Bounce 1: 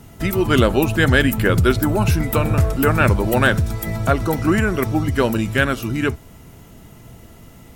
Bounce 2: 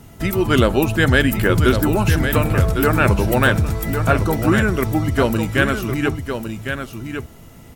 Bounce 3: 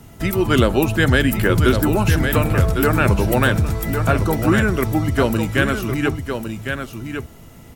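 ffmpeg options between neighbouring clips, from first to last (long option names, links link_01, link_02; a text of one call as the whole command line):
ffmpeg -i in.wav -af "aecho=1:1:1105:0.422" out.wav
ffmpeg -i in.wav -filter_complex "[0:a]acrossover=split=410|3000[link_01][link_02][link_03];[link_02]acompressor=threshold=-15dB:ratio=6[link_04];[link_01][link_04][link_03]amix=inputs=3:normalize=0" out.wav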